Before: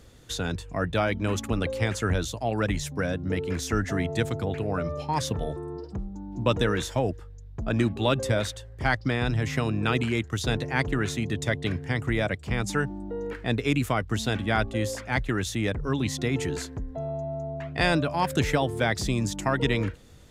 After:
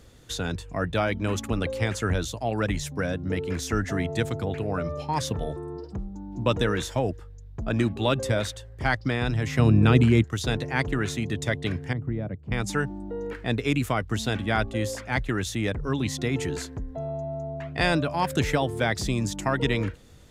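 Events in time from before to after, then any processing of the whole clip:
0:09.59–0:10.24: low-shelf EQ 380 Hz +11.5 dB
0:11.93–0:12.52: resonant band-pass 150 Hz, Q 0.73

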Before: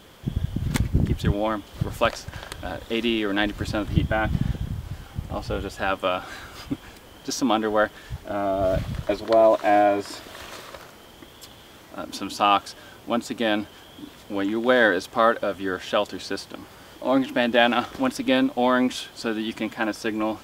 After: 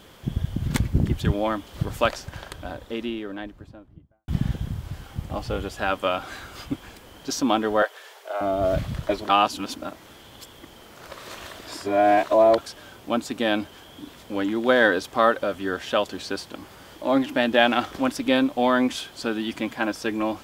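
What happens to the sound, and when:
0:01.96–0:04.28: fade out and dull
0:07.82–0:08.41: Butterworth high-pass 410 Hz 48 dB per octave
0:09.29–0:12.58: reverse

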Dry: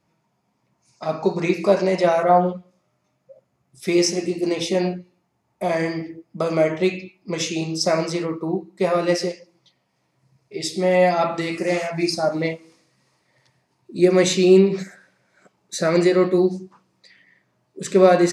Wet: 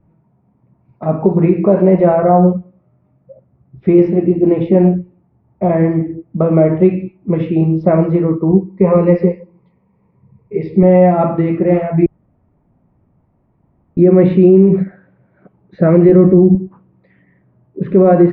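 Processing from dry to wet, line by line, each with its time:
0:08.50–0:10.83: EQ curve with evenly spaced ripples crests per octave 0.86, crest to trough 11 dB
0:12.06–0:13.97: fill with room tone
0:16.09–0:16.55: low-shelf EQ 210 Hz +11 dB
whole clip: Bessel low-pass filter 1,800 Hz, order 6; spectral tilt −4.5 dB per octave; brickwall limiter −5 dBFS; level +4 dB

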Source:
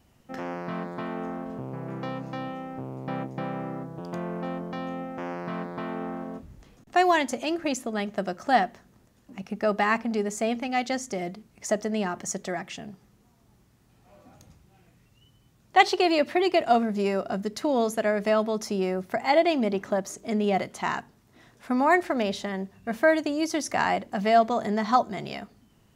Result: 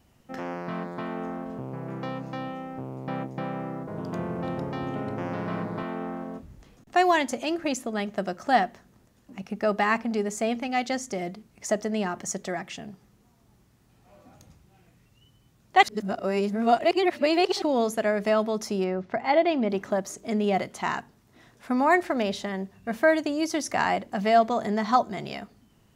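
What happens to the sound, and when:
0:03.57–0:05.83: delay with pitch and tempo change per echo 304 ms, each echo −4 semitones, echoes 2
0:15.83–0:17.62: reverse
0:18.84–0:19.70: high-frequency loss of the air 160 metres

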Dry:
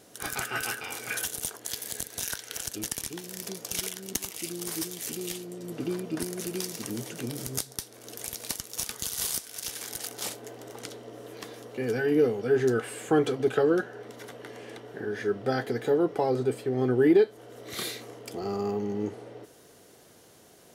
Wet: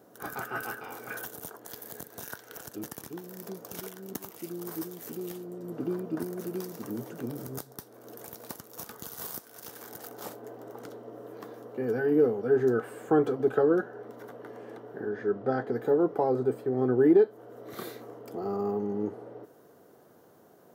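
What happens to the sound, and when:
0:15.09–0:15.73: high-frequency loss of the air 71 metres
whole clip: high-pass filter 130 Hz; flat-topped bell 4,700 Hz −14.5 dB 2.8 octaves

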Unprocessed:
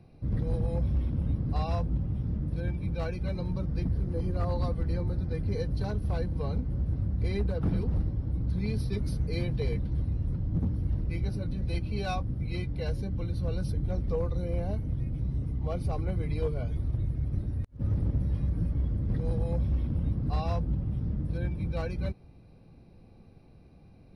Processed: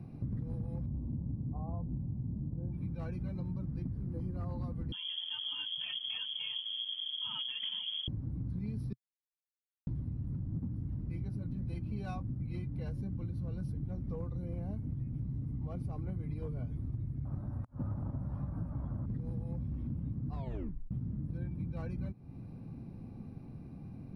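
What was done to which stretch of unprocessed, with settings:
0:00.86–0:02.73: Butterworth low-pass 1,000 Hz
0:04.92–0:08.08: voice inversion scrambler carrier 3,300 Hz
0:08.93–0:09.87: silence
0:17.25–0:19.06: flat-topped bell 930 Hz +15 dB
0:20.34: tape stop 0.57 s
whole clip: octave-band graphic EQ 125/250/500/1,000/4,000 Hz +9/+10/−3/+4/−6 dB; downward compressor, threshold −36 dBFS

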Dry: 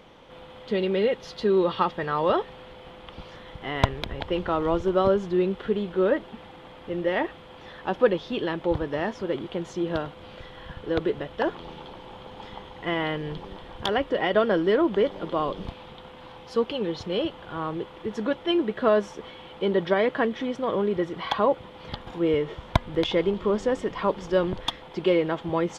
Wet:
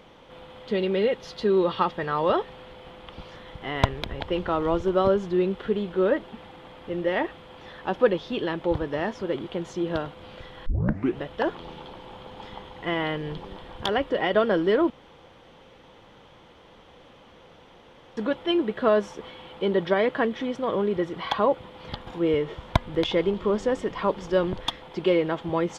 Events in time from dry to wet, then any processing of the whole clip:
0:10.66: tape start 0.53 s
0:14.90–0:18.17: fill with room tone

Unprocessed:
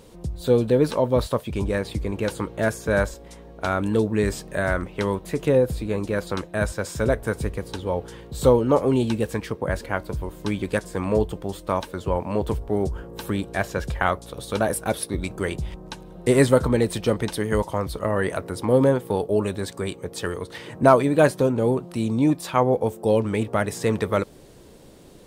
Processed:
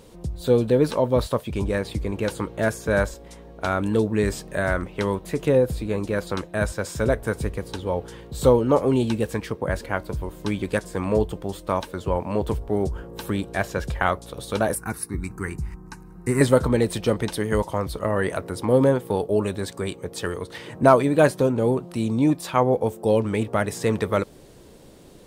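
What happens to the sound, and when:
0:14.75–0:16.41: phaser with its sweep stopped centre 1,400 Hz, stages 4

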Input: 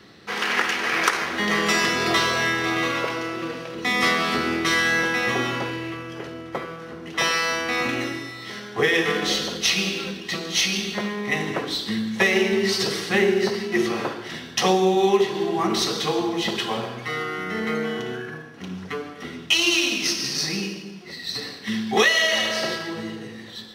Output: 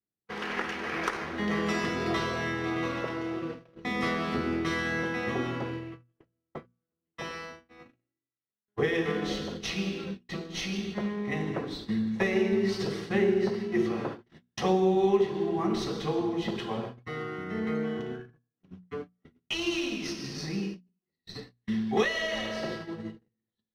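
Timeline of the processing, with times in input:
0:02.23–0:02.79: delay throw 600 ms, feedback 15%, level −11 dB
0:05.68–0:08.68: fade out linear, to −21.5 dB
0:11.58–0:12.70: notch filter 3,100 Hz, Q 14
whole clip: noise gate −30 dBFS, range −43 dB; spectral tilt −3 dB per octave; mains-hum notches 60/120/180/240 Hz; level −9 dB

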